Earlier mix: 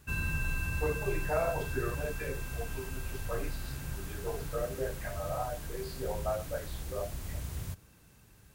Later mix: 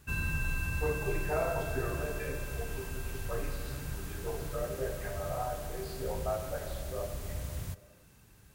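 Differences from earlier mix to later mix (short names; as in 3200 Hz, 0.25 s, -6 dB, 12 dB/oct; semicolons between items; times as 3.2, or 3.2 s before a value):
speech -4.0 dB; reverb: on, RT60 2.3 s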